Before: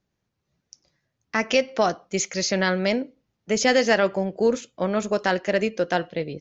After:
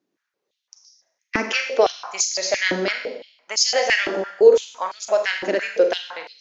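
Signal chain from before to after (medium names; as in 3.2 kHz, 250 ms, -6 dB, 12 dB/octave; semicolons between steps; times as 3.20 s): harmonic-percussive split harmonic -4 dB; Schroeder reverb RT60 0.84 s, combs from 33 ms, DRR 4.5 dB; step-sequenced high-pass 5.9 Hz 300–4900 Hz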